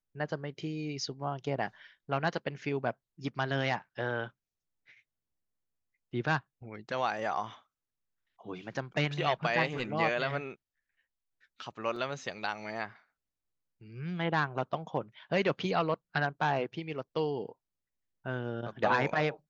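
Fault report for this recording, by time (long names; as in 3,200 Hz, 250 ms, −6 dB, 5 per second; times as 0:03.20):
0:11.96: drop-out 3.5 ms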